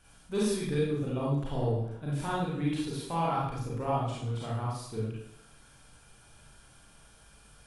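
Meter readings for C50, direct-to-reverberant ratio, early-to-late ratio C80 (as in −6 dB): −1.0 dB, −6.5 dB, 4.0 dB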